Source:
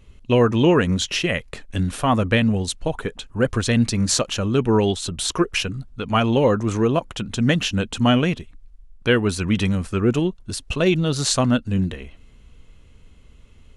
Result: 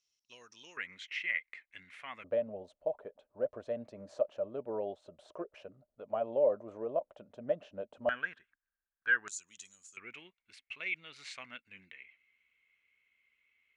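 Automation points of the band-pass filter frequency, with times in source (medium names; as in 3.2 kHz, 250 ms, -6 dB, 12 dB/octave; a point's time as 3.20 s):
band-pass filter, Q 12
5.5 kHz
from 0.77 s 2.1 kHz
from 2.24 s 600 Hz
from 8.09 s 1.6 kHz
from 9.28 s 6.9 kHz
from 9.97 s 2.2 kHz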